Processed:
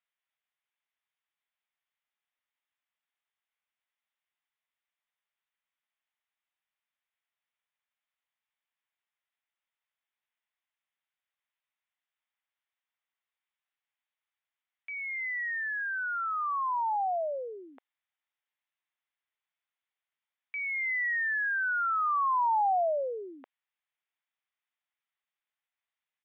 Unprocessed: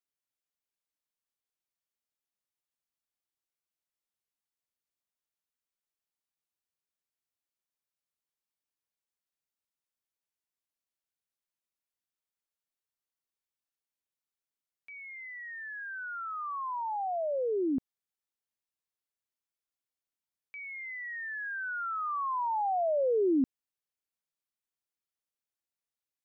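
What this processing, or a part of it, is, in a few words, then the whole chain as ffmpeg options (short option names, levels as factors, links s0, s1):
musical greeting card: -af "aresample=8000,aresample=44100,highpass=f=690:w=0.5412,highpass=f=690:w=1.3066,equalizer=f=2000:t=o:w=0.5:g=5,volume=1.78"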